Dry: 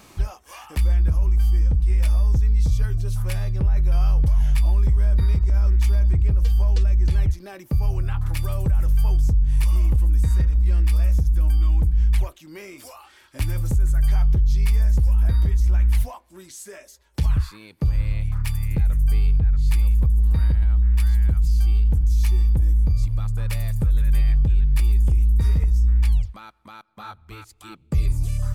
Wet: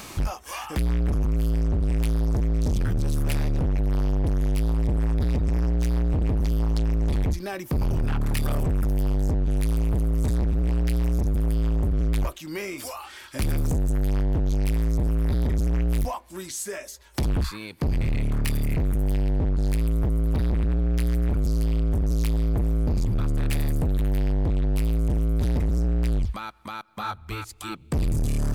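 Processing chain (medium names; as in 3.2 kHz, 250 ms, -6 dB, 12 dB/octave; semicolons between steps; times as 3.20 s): hard clipper -28 dBFS, distortion -7 dB; tape noise reduction on one side only encoder only; trim +7 dB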